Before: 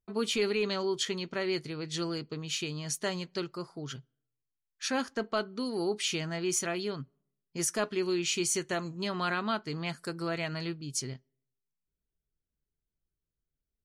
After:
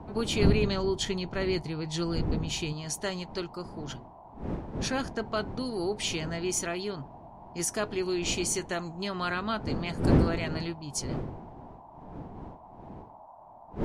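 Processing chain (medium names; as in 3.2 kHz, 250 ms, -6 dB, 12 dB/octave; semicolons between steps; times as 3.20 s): wind noise 290 Hz -36 dBFS; 0.42–2.73 s: bass shelf 190 Hz +10 dB; band noise 620–1000 Hz -51 dBFS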